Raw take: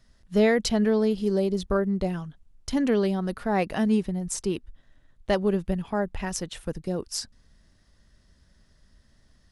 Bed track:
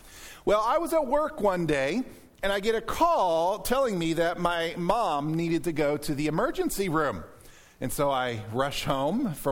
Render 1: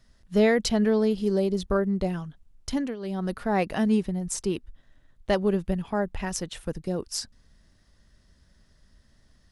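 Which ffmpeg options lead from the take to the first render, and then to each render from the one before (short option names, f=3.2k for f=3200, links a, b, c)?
-filter_complex "[0:a]asplit=3[a][b][c];[a]atrim=end=2.96,asetpts=PTS-STARTPTS,afade=t=out:st=2.7:d=0.26:silence=0.158489[d];[b]atrim=start=2.96:end=2.99,asetpts=PTS-STARTPTS,volume=-16dB[e];[c]atrim=start=2.99,asetpts=PTS-STARTPTS,afade=t=in:d=0.26:silence=0.158489[f];[d][e][f]concat=n=3:v=0:a=1"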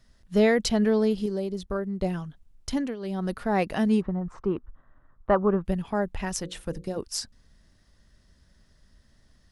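-filter_complex "[0:a]asplit=3[a][b][c];[a]afade=t=out:st=4:d=0.02[d];[b]lowpass=f=1.2k:t=q:w=4,afade=t=in:st=4:d=0.02,afade=t=out:st=5.64:d=0.02[e];[c]afade=t=in:st=5.64:d=0.02[f];[d][e][f]amix=inputs=3:normalize=0,asettb=1/sr,asplit=3[g][h][i];[g]atrim=end=6.344[j];[h]atrim=start=6.34:end=6.98,asetpts=PTS-STARTPTS,afade=t=in:d=0.004:c=qsin,afade=t=out:st=0.636:d=0.004:c=qsin,bandreject=f=60:t=h:w=6,bandreject=f=120:t=h:w=6,bandreject=f=180:t=h:w=6,bandreject=f=240:t=h:w=6,bandreject=f=300:t=h:w=6,bandreject=f=360:t=h:w=6,bandreject=f=420:t=h:w=6,bandreject=f=480:t=h:w=6,bandreject=f=540:t=h:w=6[k];[i]atrim=start=6.976[l];[j][k]acrossfade=d=0.004:c1=hsin:c2=qsin[m];[m][l]acrossfade=d=0.004:c1=qsin:c2=hsin,asplit=3[n][o][p];[n]atrim=end=1.262[q];[o]atrim=start=1.258:end=2.022,asetpts=PTS-STARTPTS,volume=-5.5dB[r];[p]atrim=start=2.018[s];[q][r]acrossfade=d=0.004:c1=hsin:c2=hsin[t];[t][s]acrossfade=d=0.004:c1=hsin:c2=hsin"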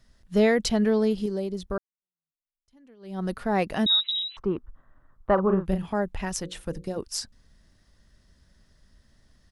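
-filter_complex "[0:a]asettb=1/sr,asplit=3[a][b][c];[a]atrim=end=3.864[d];[b]atrim=start=3.86:end=4.37,asetpts=PTS-STARTPTS,afade=t=in:d=0.004:c=qsin,afade=t=out:st=0.506:d=0.004:c=qsin,lowpass=f=3.4k:t=q:w=0.5098,lowpass=f=3.4k:t=q:w=0.6013,lowpass=f=3.4k:t=q:w=0.9,lowpass=f=3.4k:t=q:w=2.563,afreqshift=-4000[e];[c]atrim=start=4.366[f];[d][e]acrossfade=d=0.004:c1=hsin:c2=qsin[g];[g][f]acrossfade=d=0.004:c1=qsin:c2=hsin,asplit=3[h][i][j];[h]afade=t=out:st=5.37:d=0.02[k];[i]asplit=2[l][m];[m]adelay=37,volume=-6.5dB[n];[l][n]amix=inputs=2:normalize=0,afade=t=in:st=5.37:d=0.02,afade=t=out:st=5.92:d=0.02[o];[j]afade=t=in:st=5.92:d=0.02[p];[k][o][p]amix=inputs=3:normalize=0,asplit=2[q][r];[q]atrim=end=1.78,asetpts=PTS-STARTPTS,afade=t=out:st=1.776:d=0.004:c=hsin[s];[r]atrim=start=1.78,asetpts=PTS-STARTPTS,afade=t=in:d=1.42:c=exp[t];[s][t]concat=n=2:v=0:a=1"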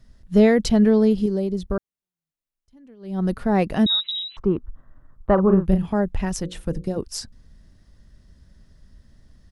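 -af "lowshelf=f=420:g=9.5"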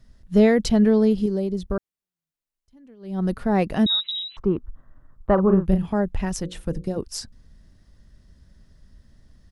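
-af "volume=-1dB"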